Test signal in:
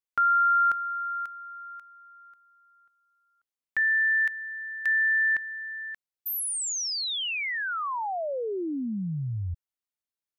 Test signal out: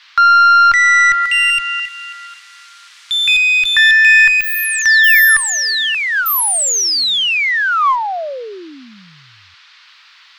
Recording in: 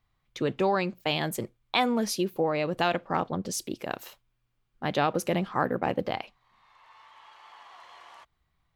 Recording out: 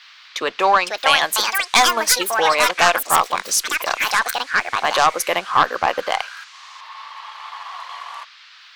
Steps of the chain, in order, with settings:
high-pass filter 830 Hz 12 dB per octave
parametric band 1,100 Hz +6.5 dB 0.31 octaves
transient designer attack −1 dB, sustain −7 dB
noise in a band 1,100–4,600 Hz −61 dBFS
harmonic generator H 2 −7 dB, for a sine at −5 dBFS
sine wavefolder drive 18 dB, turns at 0.5 dBFS
delay with pitch and tempo change per echo 613 ms, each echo +6 semitones, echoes 2
level −6.5 dB

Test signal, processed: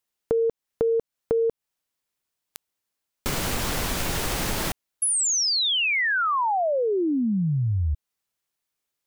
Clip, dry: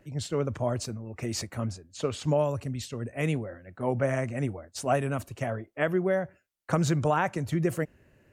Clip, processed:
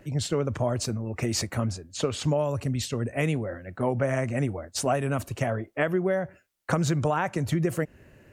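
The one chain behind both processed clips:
downward compressor 3 to 1, threshold −31 dBFS
level +7.5 dB

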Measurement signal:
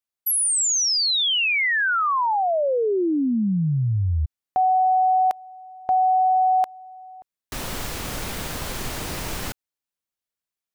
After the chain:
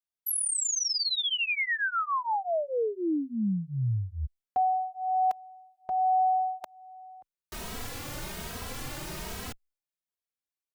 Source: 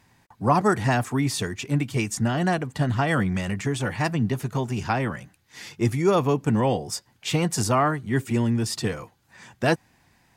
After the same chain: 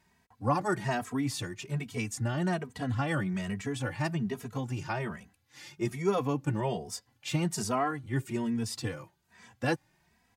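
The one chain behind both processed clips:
barber-pole flanger 2.8 ms +1.2 Hz
level −5 dB

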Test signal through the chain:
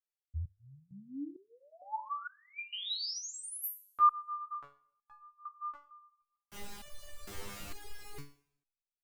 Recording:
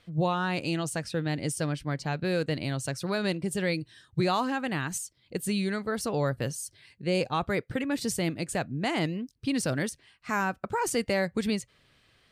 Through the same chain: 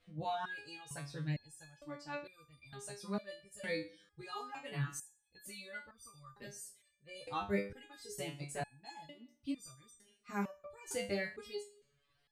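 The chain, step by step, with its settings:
multi-voice chorus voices 6, 0.47 Hz, delay 14 ms, depth 1.8 ms
reverb reduction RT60 0.91 s
coupled-rooms reverb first 0.66 s, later 1.8 s, from −25 dB, DRR 14 dB
step-sequenced resonator 2.2 Hz 100–1,200 Hz
level +4 dB

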